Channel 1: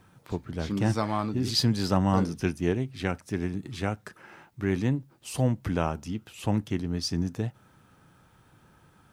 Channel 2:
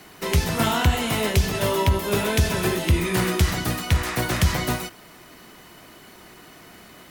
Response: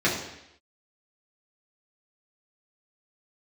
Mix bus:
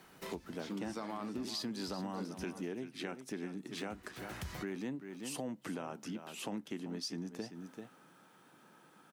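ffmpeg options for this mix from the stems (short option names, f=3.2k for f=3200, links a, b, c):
-filter_complex "[0:a]highpass=f=200:w=0.5412,highpass=f=200:w=1.3066,alimiter=limit=-20.5dB:level=0:latency=1:release=27,volume=-1dB,asplit=3[a][b][c];[b]volume=-12.5dB[d];[1:a]volume=-16dB,asplit=3[e][f][g];[e]atrim=end=2.79,asetpts=PTS-STARTPTS,afade=t=out:st=2.786:d=0.004:c=hsin[h];[f]atrim=start=2.79:end=3.77,asetpts=PTS-STARTPTS,volume=0[i];[g]atrim=start=3.77,asetpts=PTS-STARTPTS,afade=t=in:d=0.004:c=hsin[j];[h][i][j]concat=n=3:v=0:a=1[k];[c]apad=whole_len=313244[l];[k][l]sidechaincompress=threshold=-45dB:ratio=10:attack=27:release=656[m];[d]aecho=0:1:387:1[n];[a][m][n]amix=inputs=3:normalize=0,acompressor=threshold=-40dB:ratio=3"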